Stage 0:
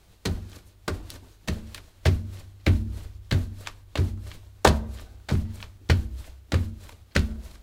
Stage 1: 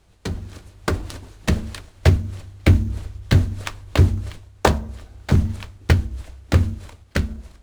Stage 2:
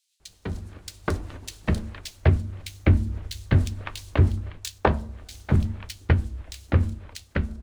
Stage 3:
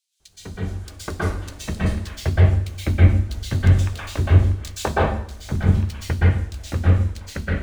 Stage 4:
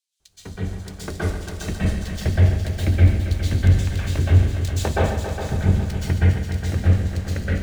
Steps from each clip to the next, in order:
LPF 11000 Hz 24 dB/oct; AGC gain up to 13 dB; in parallel at -8 dB: sample-rate reducer 6400 Hz, jitter 20%; on the sum: gain -3 dB
bands offset in time highs, lows 0.2 s, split 3100 Hz; gain -4 dB
plate-style reverb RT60 0.55 s, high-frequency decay 0.95×, pre-delay 0.11 s, DRR -7.5 dB; gain -4.5 dB
sample leveller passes 1; multi-head echo 0.137 s, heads all three, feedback 57%, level -12 dB; dynamic EQ 1100 Hz, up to -7 dB, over -42 dBFS, Q 1.9; gain -4 dB

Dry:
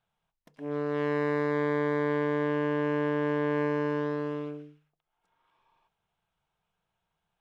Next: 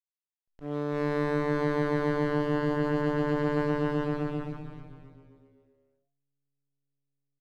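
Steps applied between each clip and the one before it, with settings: backlash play -32.5 dBFS; frequency-shifting echo 0.291 s, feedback 45%, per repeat -140 Hz, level -8 dB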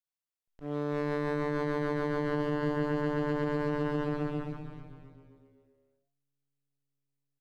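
limiter -19.5 dBFS, peak gain reduction 5 dB; gain -1.5 dB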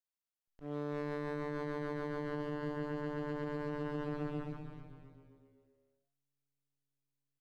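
vocal rider within 3 dB 0.5 s; gain -7.5 dB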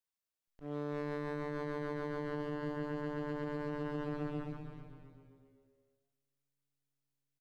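echo 0.464 s -23 dB

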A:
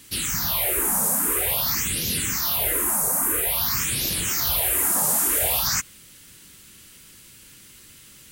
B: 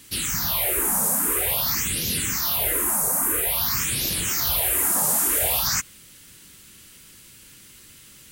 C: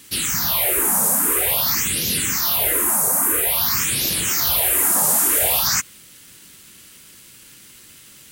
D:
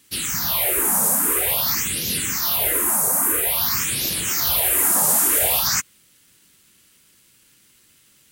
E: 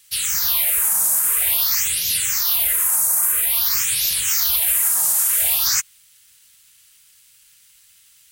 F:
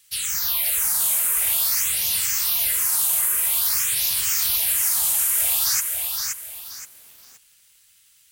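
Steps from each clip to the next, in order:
nothing audible
low shelf 90 Hz -9 dB; in parallel at -11 dB: bit-crush 7-bit; on the sum: gain +2 dB
upward expander 1.5:1, over -38 dBFS
passive tone stack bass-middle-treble 10-0-10; maximiser +12 dB; gain -7.5 dB
lo-fi delay 0.523 s, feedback 35%, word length 7-bit, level -4 dB; gain -4 dB

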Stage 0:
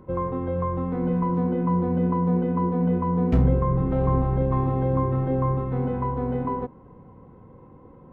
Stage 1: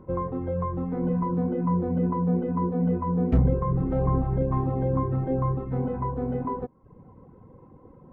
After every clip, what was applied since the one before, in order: reverb removal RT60 0.65 s; high shelf 2300 Hz -10.5 dB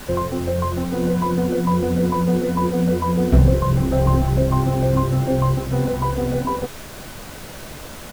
added noise pink -43 dBFS; doubler 14 ms -14 dB; small resonant body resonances 610/1500 Hz, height 7 dB; gain +6.5 dB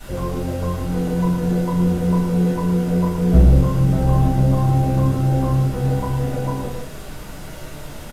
echo 0.112 s -5.5 dB; downsampling 32000 Hz; reverb RT60 0.50 s, pre-delay 3 ms, DRR -8.5 dB; gain -13.5 dB

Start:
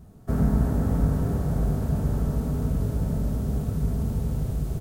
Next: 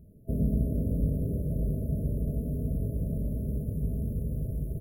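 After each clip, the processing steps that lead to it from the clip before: FFT band-reject 660–9800 Hz; gain -5 dB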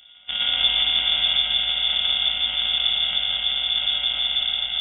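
sample sorter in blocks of 64 samples; non-linear reverb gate 0.4 s flat, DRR -3.5 dB; inverted band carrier 3500 Hz; gain +1 dB

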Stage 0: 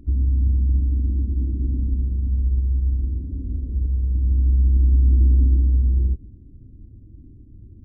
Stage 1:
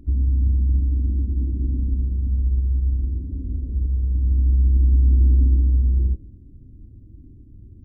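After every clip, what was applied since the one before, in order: de-hum 107.8 Hz, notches 8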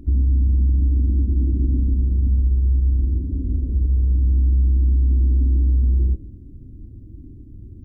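bell 330 Hz +2.5 dB; limiter -16.5 dBFS, peak gain reduction 7.5 dB; gain +4.5 dB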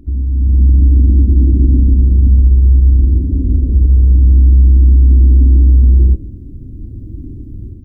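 AGC gain up to 12 dB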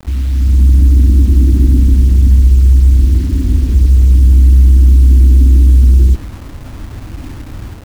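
bit-crush 6-bit; gain +1 dB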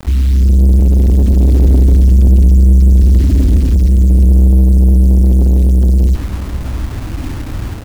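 soft clip -10.5 dBFS, distortion -11 dB; echo 0.71 s -16 dB; gain +5.5 dB

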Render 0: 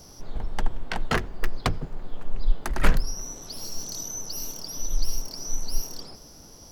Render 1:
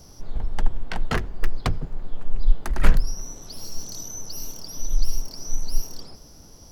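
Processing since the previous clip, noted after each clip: low shelf 150 Hz +6.5 dB; gain -2 dB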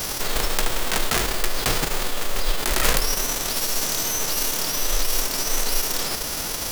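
spectral whitening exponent 0.3; fast leveller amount 70%; gain -10.5 dB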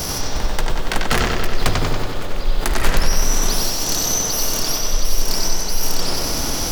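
formant sharpening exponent 2; analogue delay 94 ms, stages 4096, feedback 67%, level -3 dB; gain +4 dB

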